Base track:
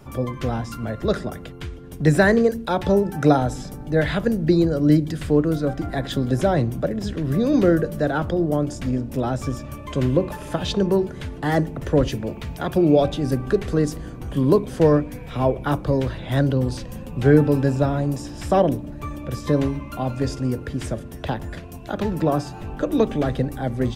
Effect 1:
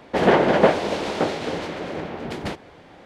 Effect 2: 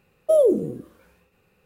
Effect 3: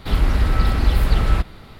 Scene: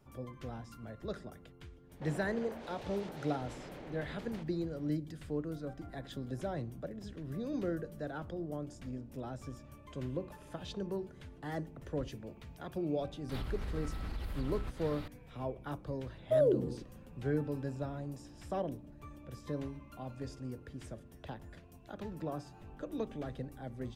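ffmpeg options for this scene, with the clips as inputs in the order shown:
ffmpeg -i bed.wav -i cue0.wav -i cue1.wav -i cue2.wav -filter_complex "[0:a]volume=-19dB[link_01];[1:a]acompressor=threshold=-27dB:ratio=6:attack=3.2:release=140:knee=1:detection=peak[link_02];[3:a]acompressor=threshold=-34dB:ratio=6:attack=3.2:release=140:knee=1:detection=peak[link_03];[2:a]lowpass=frequency=2500:poles=1[link_04];[link_02]atrim=end=3.05,asetpts=PTS-STARTPTS,volume=-17dB,afade=type=in:duration=0.05,afade=type=out:start_time=3:duration=0.05,adelay=1880[link_05];[link_03]atrim=end=1.79,asetpts=PTS-STARTPTS,volume=-3.5dB,afade=type=in:duration=0.004:curve=hsin,afade=type=out:start_time=1.786:duration=0.004:curve=hsin,adelay=13290[link_06];[link_04]atrim=end=1.65,asetpts=PTS-STARTPTS,volume=-10.5dB,afade=type=in:duration=0.004:curve=hsin,afade=type=out:start_time=1.646:duration=0.004:curve=hsin,adelay=16020[link_07];[link_01][link_05][link_06][link_07]amix=inputs=4:normalize=0" out.wav

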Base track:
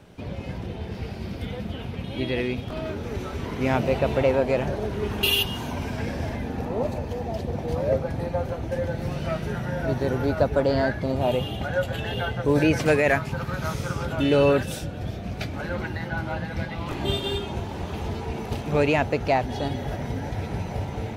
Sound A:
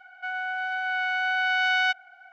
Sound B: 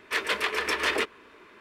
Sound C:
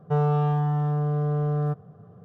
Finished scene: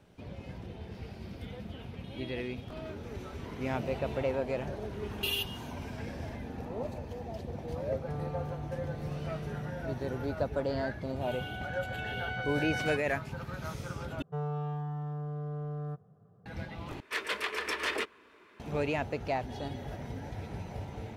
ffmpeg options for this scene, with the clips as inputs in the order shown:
ffmpeg -i bed.wav -i cue0.wav -i cue1.wav -i cue2.wav -filter_complex "[3:a]asplit=2[link_01][link_02];[0:a]volume=-10.5dB[link_03];[1:a]aecho=1:1:4:0.55[link_04];[2:a]highpass=40[link_05];[link_03]asplit=3[link_06][link_07][link_08];[link_06]atrim=end=14.224[link_09];[link_02]atrim=end=2.24,asetpts=PTS-STARTPTS,volume=-12.5dB[link_10];[link_07]atrim=start=16.456:end=17.004[link_11];[link_05]atrim=end=1.6,asetpts=PTS-STARTPTS,volume=-6.5dB[link_12];[link_08]atrim=start=18.596[link_13];[link_01]atrim=end=2.24,asetpts=PTS-STARTPTS,volume=-17dB,afade=type=in:duration=0.004:curve=hsin,afade=type=out:start_time=2.236:duration=0.004:curve=hsin,adelay=7970[link_14];[link_04]atrim=end=2.32,asetpts=PTS-STARTPTS,volume=-16.5dB,afade=type=in:duration=0.004:curve=hsin,afade=type=out:start_time=2.316:duration=0.004:curve=hsin,adelay=11040[link_15];[link_09][link_10]acrossfade=duration=0.004:curve1=hsin:curve2=hsin[link_16];[link_16][link_11]acrossfade=duration=0.004:curve1=hsin:curve2=hsin[link_17];[link_17][link_12]acrossfade=duration=0.004:curve1=hsin:curve2=hsin[link_18];[link_18][link_13]acrossfade=duration=0.004:curve1=hsin:curve2=hsin[link_19];[link_19][link_14][link_15]amix=inputs=3:normalize=0" out.wav

